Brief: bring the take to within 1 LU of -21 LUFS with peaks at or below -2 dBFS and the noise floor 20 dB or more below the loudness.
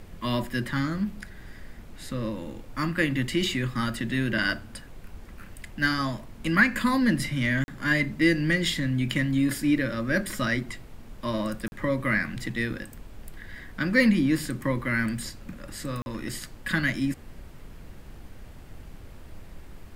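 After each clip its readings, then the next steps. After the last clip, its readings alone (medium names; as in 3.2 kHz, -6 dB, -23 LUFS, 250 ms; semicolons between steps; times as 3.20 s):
dropouts 3; longest dropout 41 ms; noise floor -46 dBFS; noise floor target -47 dBFS; loudness -26.5 LUFS; peak level -7.0 dBFS; loudness target -21.0 LUFS
-> interpolate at 7.64/11.68/16.02 s, 41 ms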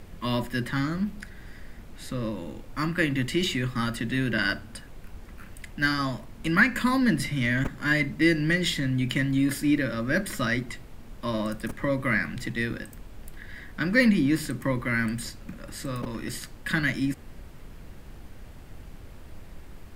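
dropouts 0; noise floor -45 dBFS; noise floor target -47 dBFS
-> noise print and reduce 6 dB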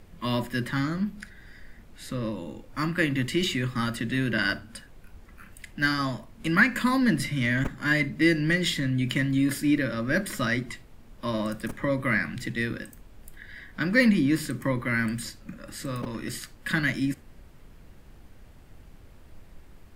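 noise floor -51 dBFS; loudness -26.5 LUFS; peak level -6.5 dBFS; loudness target -21.0 LUFS
-> trim +5.5 dB; peak limiter -2 dBFS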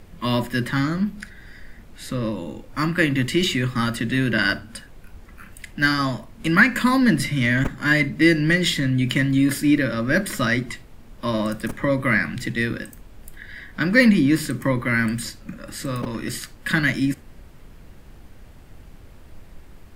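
loudness -21.0 LUFS; peak level -2.0 dBFS; noise floor -45 dBFS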